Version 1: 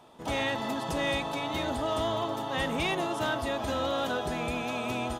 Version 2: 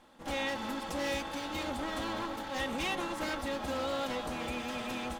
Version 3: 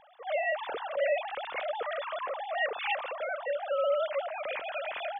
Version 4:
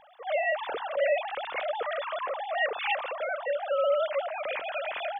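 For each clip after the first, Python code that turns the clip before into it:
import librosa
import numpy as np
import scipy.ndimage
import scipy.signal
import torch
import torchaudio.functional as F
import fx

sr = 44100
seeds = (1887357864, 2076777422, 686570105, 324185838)

y1 = fx.lower_of_two(x, sr, delay_ms=3.7)
y1 = y1 * librosa.db_to_amplitude(-3.5)
y2 = fx.sine_speech(y1, sr)
y2 = fx.low_shelf(y2, sr, hz=440.0, db=9.5)
y2 = fx.rider(y2, sr, range_db=10, speed_s=2.0)
y3 = fx.hum_notches(y2, sr, base_hz=60, count=4)
y3 = y3 * librosa.db_to_amplitude(2.5)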